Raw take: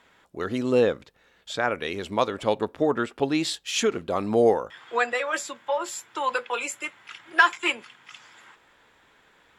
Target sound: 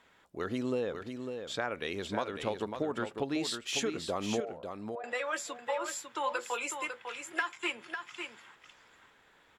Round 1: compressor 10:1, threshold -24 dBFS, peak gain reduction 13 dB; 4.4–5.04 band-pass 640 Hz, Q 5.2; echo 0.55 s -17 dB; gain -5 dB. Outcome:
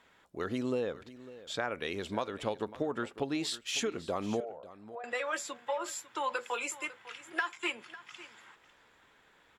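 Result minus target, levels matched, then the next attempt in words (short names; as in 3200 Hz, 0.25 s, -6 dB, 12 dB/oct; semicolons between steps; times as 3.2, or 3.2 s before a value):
echo-to-direct -10 dB
compressor 10:1, threshold -24 dBFS, peak gain reduction 13 dB; 4.4–5.04 band-pass 640 Hz, Q 5.2; echo 0.55 s -7 dB; gain -5 dB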